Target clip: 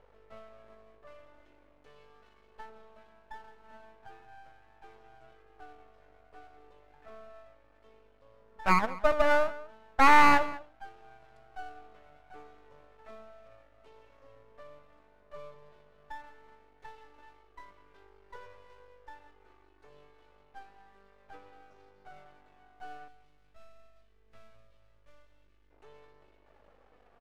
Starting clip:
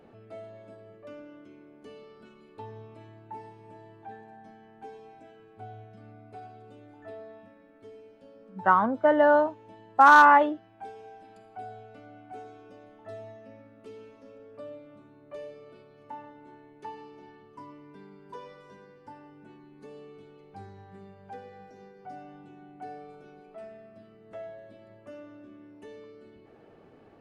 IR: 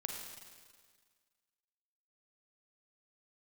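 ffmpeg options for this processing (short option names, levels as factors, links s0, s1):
-filter_complex "[0:a]highpass=f=520:w=0.5412,highpass=f=520:w=1.3066,aemphasis=mode=reproduction:type=bsi,aeval=exprs='val(0)+0.000708*(sin(2*PI*50*n/s)+sin(2*PI*2*50*n/s)/2+sin(2*PI*3*50*n/s)/3+sin(2*PI*4*50*n/s)/4+sin(2*PI*5*50*n/s)/5)':c=same,flanger=delay=2.1:depth=2.7:regen=39:speed=0.16:shape=sinusoidal,aeval=exprs='max(val(0),0)':c=same,asettb=1/sr,asplit=3[s0][s1][s2];[s0]atrim=end=23.084[s3];[s1]atrim=start=23.08:end=25.71,asetpts=PTS-STARTPTS,afade=t=in:d=0.004:c=qsin,afade=t=out:st=2.626:d=0.004:c=qsin,equalizer=f=710:w=0.41:g=-13.5[s4];[s2]atrim=start=25.706[s5];[s3][s4]acrossfade=d=0.004:c1=hsin:c2=qsin[s6];[s6][s5]acrossfade=d=0.004:c1=qsin:c2=hsin,asplit=2[s7][s8];[s8]adelay=198.3,volume=0.126,highshelf=f=4000:g=-4.46[s9];[s7][s9]amix=inputs=2:normalize=0,volume=1.5"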